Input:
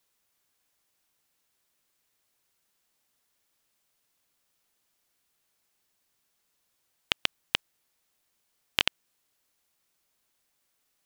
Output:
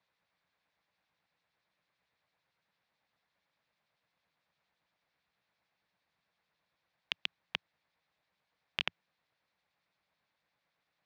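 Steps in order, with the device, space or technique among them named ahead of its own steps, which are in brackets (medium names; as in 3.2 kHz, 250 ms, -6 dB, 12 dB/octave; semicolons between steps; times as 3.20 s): guitar amplifier with harmonic tremolo (harmonic tremolo 8.9 Hz, depth 50%, crossover 2.3 kHz; saturation -14.5 dBFS, distortion -9 dB; cabinet simulation 78–3700 Hz, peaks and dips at 100 Hz -4 dB, 170 Hz +3 dB, 250 Hz -8 dB, 380 Hz -10 dB, 1.3 kHz -3 dB, 3 kHz -8 dB); trim +4.5 dB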